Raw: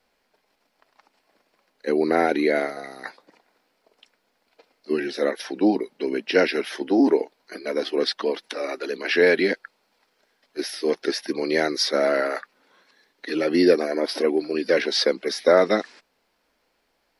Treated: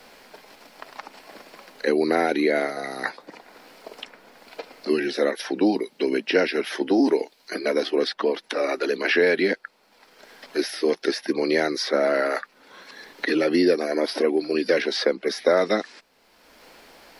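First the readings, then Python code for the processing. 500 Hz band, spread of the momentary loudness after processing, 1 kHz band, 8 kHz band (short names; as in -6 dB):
-0.5 dB, 20 LU, -0.5 dB, -1.5 dB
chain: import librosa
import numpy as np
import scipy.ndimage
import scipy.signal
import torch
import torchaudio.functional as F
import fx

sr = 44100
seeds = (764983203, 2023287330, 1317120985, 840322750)

y = fx.band_squash(x, sr, depth_pct=70)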